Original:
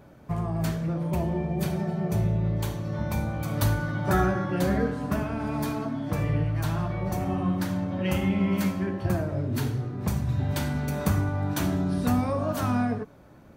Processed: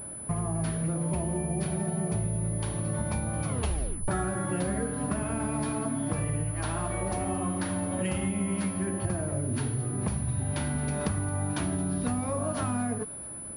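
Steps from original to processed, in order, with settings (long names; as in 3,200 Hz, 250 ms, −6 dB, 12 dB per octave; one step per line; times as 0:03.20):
0:06.51–0:08.02: parametric band 140 Hz −14 dB 0.64 octaves
downward compressor, threshold −31 dBFS, peak gain reduction 12 dB
delay with a high-pass on its return 221 ms, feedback 65%, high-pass 2,500 Hz, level −18 dB
0:03.48: tape stop 0.60 s
switching amplifier with a slow clock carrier 10,000 Hz
level +4 dB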